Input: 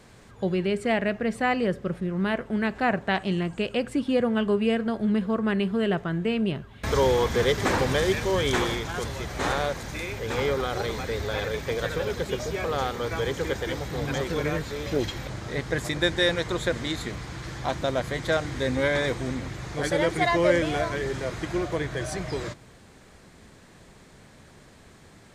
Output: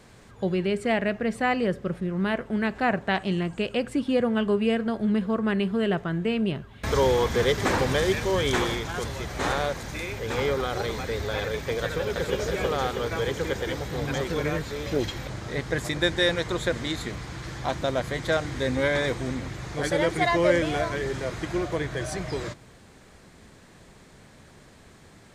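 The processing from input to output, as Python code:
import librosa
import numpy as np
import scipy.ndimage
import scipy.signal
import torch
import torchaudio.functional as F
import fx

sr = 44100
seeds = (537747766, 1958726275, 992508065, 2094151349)

y = fx.echo_throw(x, sr, start_s=11.83, length_s=0.57, ms=320, feedback_pct=65, wet_db=-3.5)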